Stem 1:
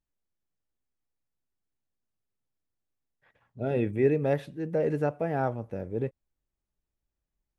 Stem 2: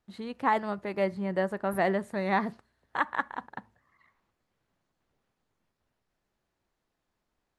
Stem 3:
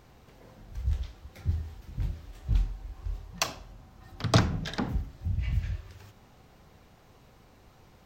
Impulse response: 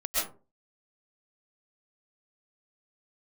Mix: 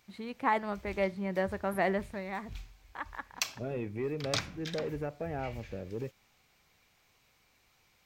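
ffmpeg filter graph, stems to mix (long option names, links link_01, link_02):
-filter_complex "[0:a]acompressor=threshold=-31dB:ratio=2,asoftclip=type=tanh:threshold=-22.5dB,volume=-3.5dB[link_01];[1:a]volume=-3dB,afade=type=out:start_time=1.97:duration=0.34:silence=0.334965[link_02];[2:a]tiltshelf=frequency=1200:gain=-8.5,volume=-10.5dB[link_03];[link_01][link_02][link_03]amix=inputs=3:normalize=0,equalizer=frequency=2300:width=5.2:gain=7"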